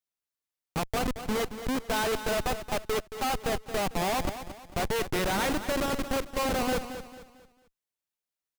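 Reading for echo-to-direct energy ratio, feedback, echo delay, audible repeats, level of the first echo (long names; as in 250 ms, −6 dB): −10.5 dB, 37%, 224 ms, 3, −11.0 dB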